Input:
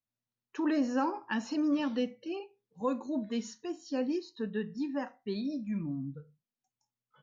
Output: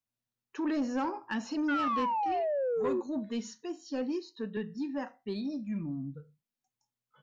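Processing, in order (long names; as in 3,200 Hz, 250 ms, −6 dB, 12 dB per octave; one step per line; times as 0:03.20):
0:01.68–0:03.01: sound drawn into the spectrogram fall 350–1,500 Hz −29 dBFS
0:03.61–0:04.57: high-pass filter 160 Hz
soft clipping −24 dBFS, distortion −17 dB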